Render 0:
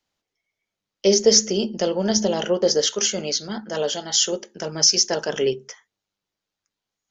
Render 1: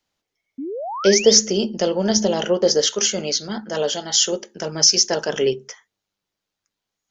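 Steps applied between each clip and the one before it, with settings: painted sound rise, 0.58–1.32 s, 250–3800 Hz -30 dBFS; trim +2 dB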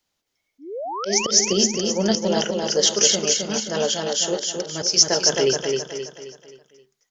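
treble shelf 4.6 kHz +6 dB; slow attack 190 ms; on a send: feedback delay 264 ms, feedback 43%, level -4 dB; on the sum: trim -1 dB

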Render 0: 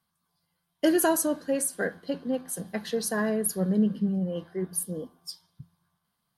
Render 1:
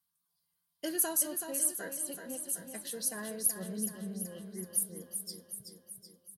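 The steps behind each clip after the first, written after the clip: pre-emphasis filter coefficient 0.8; on a send: feedback delay 378 ms, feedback 58%, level -7.5 dB; on the sum: trim -1.5 dB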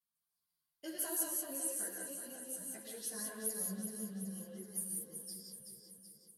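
gated-style reverb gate 210 ms rising, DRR -1 dB; three-phase chorus; trim -6.5 dB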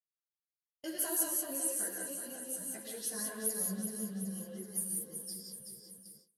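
gate with hold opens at -47 dBFS; trim +4 dB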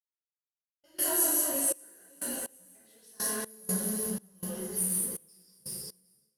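companding laws mixed up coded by mu; gated-style reverb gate 220 ms falling, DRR -6 dB; trance gate ".xx.xxx..x...x" 61 bpm -24 dB; trim -1.5 dB

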